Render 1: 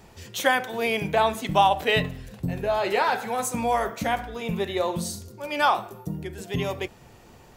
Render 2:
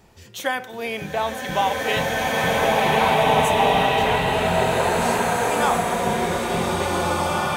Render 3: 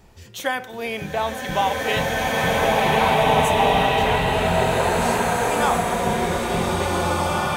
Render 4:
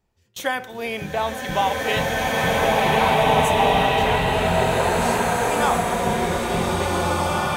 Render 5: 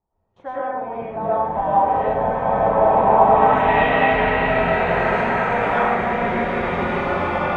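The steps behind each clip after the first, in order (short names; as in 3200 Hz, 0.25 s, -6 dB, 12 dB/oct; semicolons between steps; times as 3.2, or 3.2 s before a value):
bloom reverb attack 2.17 s, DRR -8 dB; gain -3 dB
low shelf 62 Hz +10.5 dB
gate with hold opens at -27 dBFS
low-pass sweep 930 Hz -> 2100 Hz, 3.13–3.67; digital reverb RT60 1.3 s, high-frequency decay 0.3×, pre-delay 70 ms, DRR -9 dB; gain -10.5 dB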